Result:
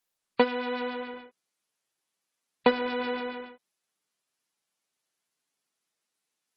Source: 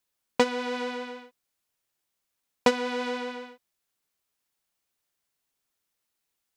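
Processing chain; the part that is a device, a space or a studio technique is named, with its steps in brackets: noise-suppressed video call (high-pass 140 Hz 24 dB/octave; spectral gate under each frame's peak -25 dB strong; Opus 16 kbps 48 kHz)

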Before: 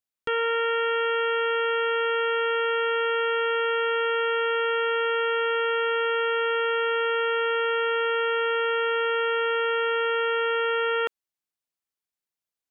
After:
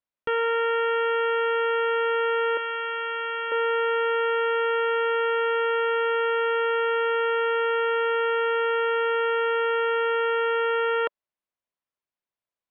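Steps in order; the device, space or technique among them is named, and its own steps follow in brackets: 2.57–3.52 s: high-pass 1.4 kHz 6 dB/octave; inside a cardboard box (low-pass 2.9 kHz 12 dB/octave; small resonant body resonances 590/1000 Hz, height 6 dB, ringing for 20 ms)

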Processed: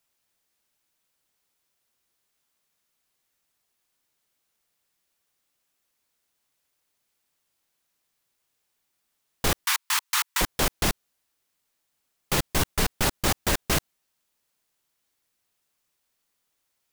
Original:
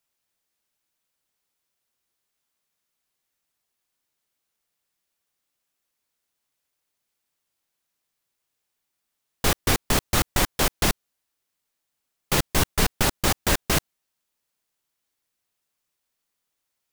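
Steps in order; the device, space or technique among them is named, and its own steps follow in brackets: 9.65–10.41 s: elliptic high-pass 940 Hz, stop band 40 dB; soft clipper into limiter (saturation -9.5 dBFS, distortion -23 dB; peak limiter -17.5 dBFS, peak gain reduction 7 dB); trim +3.5 dB

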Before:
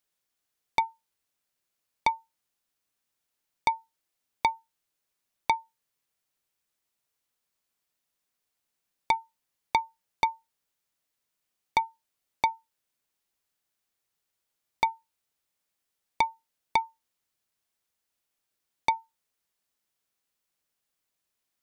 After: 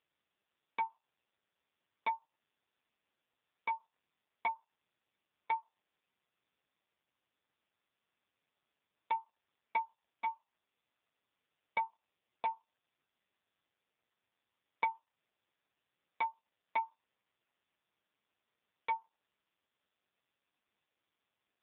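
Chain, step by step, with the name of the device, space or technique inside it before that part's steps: spectral noise reduction 7 dB; voicemail (band-pass 330–3300 Hz; compression 10:1, threshold -23 dBFS, peak gain reduction 5 dB; trim +2 dB; AMR-NB 5.15 kbps 8 kHz)

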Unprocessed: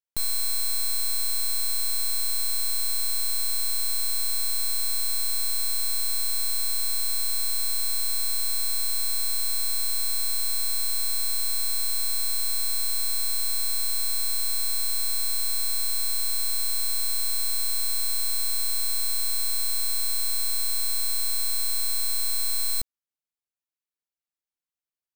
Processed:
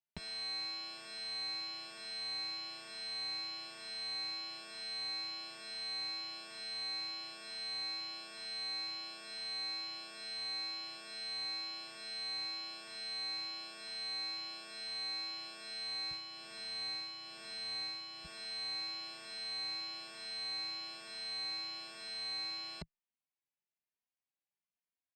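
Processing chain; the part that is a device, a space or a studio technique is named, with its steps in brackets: 16.11–18.25 s: bass shelf 210 Hz +4.5 dB; barber-pole flanger into a guitar amplifier (endless flanger 3 ms +1.1 Hz; saturation -20.5 dBFS, distortion -20 dB; cabinet simulation 100–4000 Hz, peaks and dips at 110 Hz -5 dB, 160 Hz +4 dB, 310 Hz -7 dB, 480 Hz -6 dB, 1.3 kHz -9 dB, 3.6 kHz -8 dB); trim +2.5 dB

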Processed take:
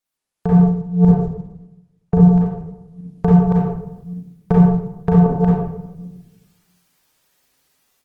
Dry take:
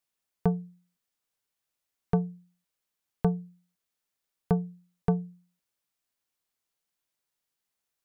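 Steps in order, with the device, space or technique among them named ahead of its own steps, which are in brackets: chunks repeated in reverse 376 ms, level -4 dB; 0.53–2.30 s: tilt shelf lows +8 dB, about 1.3 kHz; speakerphone in a meeting room (reverberation RT60 0.90 s, pre-delay 33 ms, DRR -5 dB; level rider gain up to 16 dB; trim -1 dB; Opus 20 kbps 48 kHz)

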